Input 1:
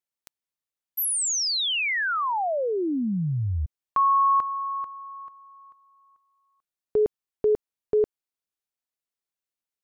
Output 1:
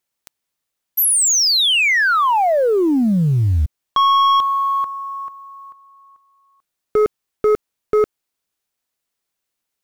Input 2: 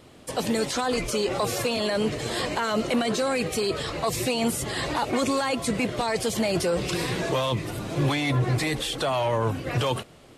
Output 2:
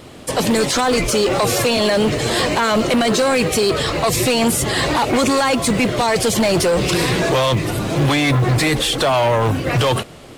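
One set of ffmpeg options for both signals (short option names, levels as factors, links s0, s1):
-af "aeval=exprs='0.224*(cos(1*acos(clip(val(0)/0.224,-1,1)))-cos(1*PI/2))+0.0501*(cos(5*acos(clip(val(0)/0.224,-1,1)))-cos(5*PI/2))+0.00355*(cos(6*acos(clip(val(0)/0.224,-1,1)))-cos(6*PI/2))+0.00178*(cos(7*acos(clip(val(0)/0.224,-1,1)))-cos(7*PI/2))+0.00141*(cos(8*acos(clip(val(0)/0.224,-1,1)))-cos(8*PI/2))':c=same,acrusher=bits=9:mode=log:mix=0:aa=0.000001,volume=1.88"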